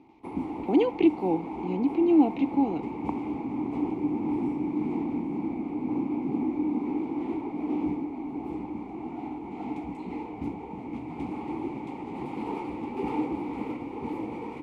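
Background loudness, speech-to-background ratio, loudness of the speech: -32.5 LUFS, 7.0 dB, -25.5 LUFS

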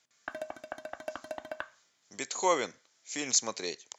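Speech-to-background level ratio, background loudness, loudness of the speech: 11.5 dB, -42.5 LUFS, -31.0 LUFS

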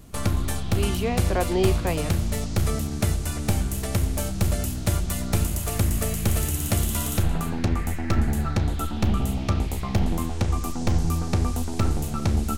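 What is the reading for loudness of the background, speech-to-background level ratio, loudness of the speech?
-26.0 LUFS, -2.0 dB, -28.0 LUFS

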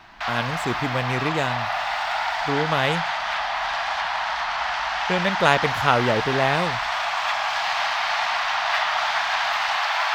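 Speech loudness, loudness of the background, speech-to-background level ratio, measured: -24.0 LUFS, -24.0 LUFS, 0.0 dB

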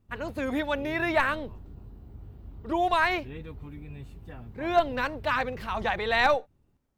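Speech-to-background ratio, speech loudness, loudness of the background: 17.5 dB, -27.5 LUFS, -45.0 LUFS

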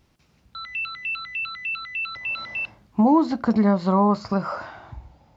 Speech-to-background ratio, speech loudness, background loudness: 7.5 dB, -21.0 LUFS, -28.5 LUFS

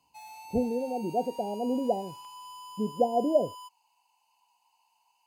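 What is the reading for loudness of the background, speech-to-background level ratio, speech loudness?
-45.5 LUFS, 15.5 dB, -30.0 LUFS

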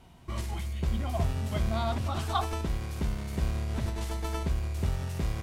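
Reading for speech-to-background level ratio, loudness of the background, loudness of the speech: -4.5 dB, -33.0 LUFS, -37.5 LUFS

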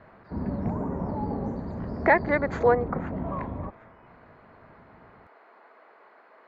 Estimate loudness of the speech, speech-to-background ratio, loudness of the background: -24.5 LUFS, 8.5 dB, -33.0 LUFS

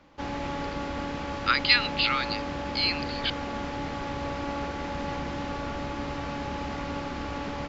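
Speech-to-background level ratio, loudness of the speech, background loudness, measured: 7.5 dB, -26.0 LUFS, -33.5 LUFS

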